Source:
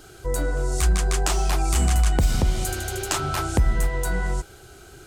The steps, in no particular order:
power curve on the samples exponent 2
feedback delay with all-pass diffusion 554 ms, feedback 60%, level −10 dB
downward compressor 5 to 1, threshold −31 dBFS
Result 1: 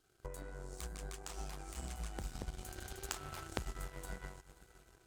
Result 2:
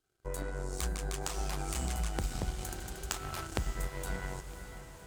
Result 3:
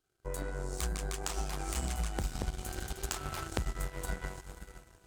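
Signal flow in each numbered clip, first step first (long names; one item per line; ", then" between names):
downward compressor, then feedback delay with all-pass diffusion, then power curve on the samples
power curve on the samples, then downward compressor, then feedback delay with all-pass diffusion
feedback delay with all-pass diffusion, then power curve on the samples, then downward compressor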